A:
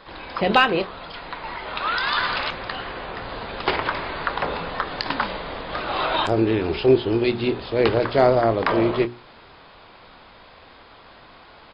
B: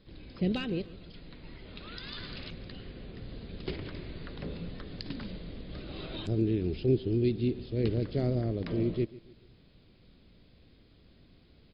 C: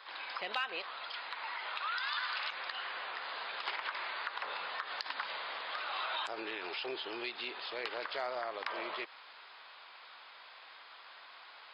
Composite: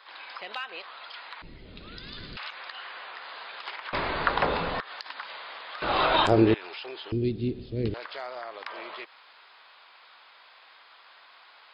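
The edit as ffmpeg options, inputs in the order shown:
-filter_complex "[1:a]asplit=2[a][b];[0:a]asplit=2[c][d];[2:a]asplit=5[e][f][g][h][i];[e]atrim=end=1.422[j];[a]atrim=start=1.418:end=2.372[k];[f]atrim=start=2.368:end=3.932[l];[c]atrim=start=3.928:end=4.802[m];[g]atrim=start=4.798:end=5.822[n];[d]atrim=start=5.818:end=6.542[o];[h]atrim=start=6.538:end=7.122[p];[b]atrim=start=7.118:end=7.942[q];[i]atrim=start=7.938[r];[j][k]acrossfade=d=0.004:c1=hsin:c2=hsin[s];[s][l]acrossfade=d=0.004:c1=hsin:c2=hsin[t];[t][m]acrossfade=d=0.004:c1=hsin:c2=hsin[u];[u][n]acrossfade=d=0.004:c1=hsin:c2=hsin[v];[v][o]acrossfade=d=0.004:c1=hsin:c2=hsin[w];[w][p]acrossfade=d=0.004:c1=hsin:c2=hsin[x];[x][q]acrossfade=d=0.004:c1=hsin:c2=hsin[y];[y][r]acrossfade=d=0.004:c1=hsin:c2=hsin"

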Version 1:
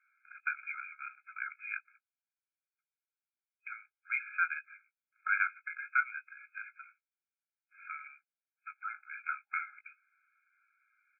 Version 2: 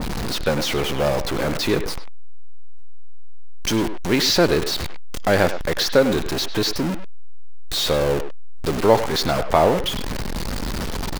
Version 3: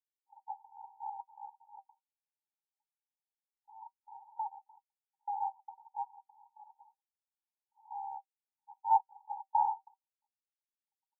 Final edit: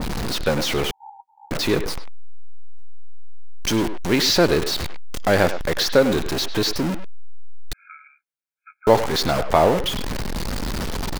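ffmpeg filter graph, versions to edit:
-filter_complex "[1:a]asplit=3[a][b][c];[a]atrim=end=0.912[d];[2:a]atrim=start=0.908:end=1.512[e];[b]atrim=start=1.508:end=7.732[f];[0:a]atrim=start=7.728:end=8.872[g];[c]atrim=start=8.868[h];[d][e]acrossfade=d=0.004:c1=hsin:c2=hsin[i];[i][f]acrossfade=d=0.004:c1=hsin:c2=hsin[j];[j][g]acrossfade=d=0.004:c1=hsin:c2=hsin[k];[k][h]acrossfade=d=0.004:c1=hsin:c2=hsin"

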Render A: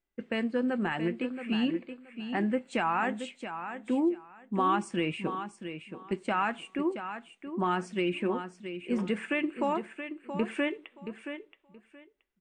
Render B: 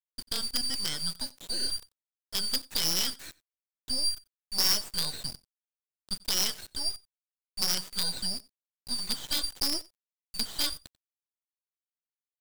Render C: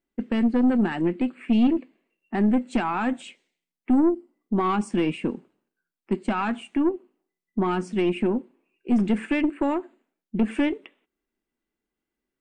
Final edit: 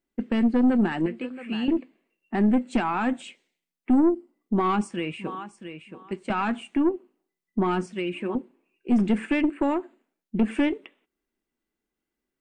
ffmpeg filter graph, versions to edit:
-filter_complex "[0:a]asplit=3[a][b][c];[2:a]asplit=4[d][e][f][g];[d]atrim=end=1.062[h];[a]atrim=start=1.058:end=1.682[i];[e]atrim=start=1.678:end=4.872[j];[b]atrim=start=4.868:end=6.302[k];[f]atrim=start=6.298:end=7.862[l];[c]atrim=start=7.858:end=8.352[m];[g]atrim=start=8.348[n];[h][i]acrossfade=d=0.004:c1=hsin:c2=hsin[o];[o][j]acrossfade=d=0.004:c1=hsin:c2=hsin[p];[p][k]acrossfade=d=0.004:c1=hsin:c2=hsin[q];[q][l]acrossfade=d=0.004:c1=hsin:c2=hsin[r];[r][m]acrossfade=d=0.004:c1=hsin:c2=hsin[s];[s][n]acrossfade=d=0.004:c1=hsin:c2=hsin"

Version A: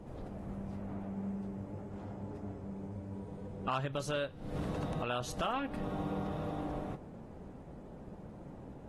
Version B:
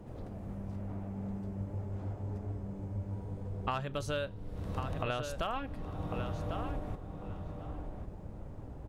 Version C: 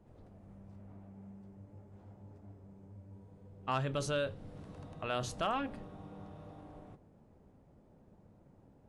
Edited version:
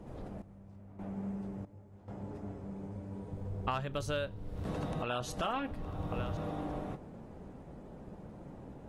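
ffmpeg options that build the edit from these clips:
-filter_complex "[2:a]asplit=2[a][b];[1:a]asplit=2[c][d];[0:a]asplit=5[e][f][g][h][i];[e]atrim=end=0.422[j];[a]atrim=start=0.418:end=0.992[k];[f]atrim=start=0.988:end=1.652[l];[b]atrim=start=1.648:end=2.082[m];[g]atrim=start=2.078:end=3.332[n];[c]atrim=start=3.328:end=4.652[o];[h]atrim=start=4.648:end=5.712[p];[d]atrim=start=5.708:end=6.372[q];[i]atrim=start=6.368[r];[j][k]acrossfade=d=0.004:c1=hsin:c2=hsin[s];[s][l]acrossfade=d=0.004:c1=hsin:c2=hsin[t];[t][m]acrossfade=d=0.004:c1=hsin:c2=hsin[u];[u][n]acrossfade=d=0.004:c1=hsin:c2=hsin[v];[v][o]acrossfade=d=0.004:c1=hsin:c2=hsin[w];[w][p]acrossfade=d=0.004:c1=hsin:c2=hsin[x];[x][q]acrossfade=d=0.004:c1=hsin:c2=hsin[y];[y][r]acrossfade=d=0.004:c1=hsin:c2=hsin"

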